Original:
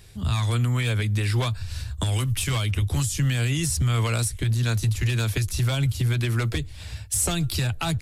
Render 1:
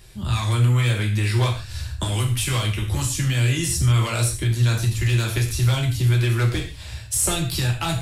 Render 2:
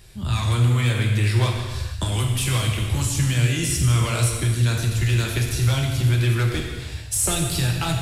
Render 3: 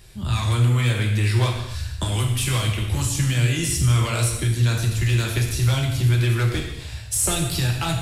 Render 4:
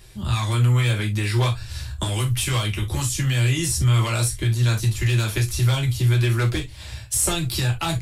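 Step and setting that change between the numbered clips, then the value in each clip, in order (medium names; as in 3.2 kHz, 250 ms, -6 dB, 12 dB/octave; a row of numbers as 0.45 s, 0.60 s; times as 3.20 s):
gated-style reverb, gate: 170 ms, 500 ms, 330 ms, 90 ms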